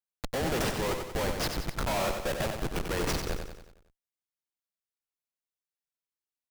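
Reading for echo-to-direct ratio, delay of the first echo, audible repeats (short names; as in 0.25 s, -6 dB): -4.5 dB, 92 ms, 5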